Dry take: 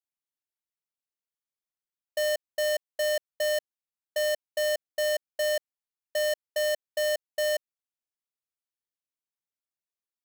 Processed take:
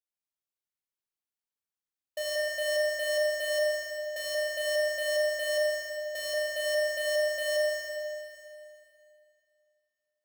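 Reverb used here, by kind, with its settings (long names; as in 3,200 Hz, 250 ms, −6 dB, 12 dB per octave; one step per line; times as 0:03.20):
four-comb reverb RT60 2.6 s, combs from 27 ms, DRR −2.5 dB
level −6.5 dB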